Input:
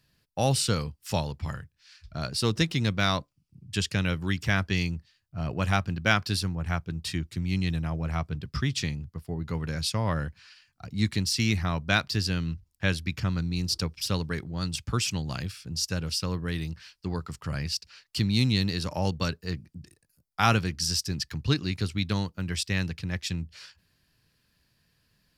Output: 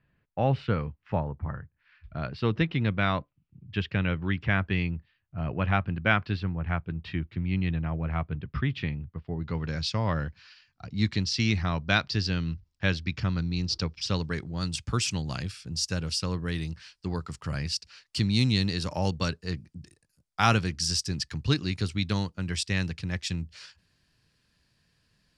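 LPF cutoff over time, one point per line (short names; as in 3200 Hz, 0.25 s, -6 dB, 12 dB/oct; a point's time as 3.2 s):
LPF 24 dB/oct
1.01 s 2400 Hz
1.33 s 1400 Hz
2.18 s 2900 Hz
9.13 s 2900 Hz
9.7 s 5600 Hz
13.94 s 5600 Hz
14.57 s 9800 Hz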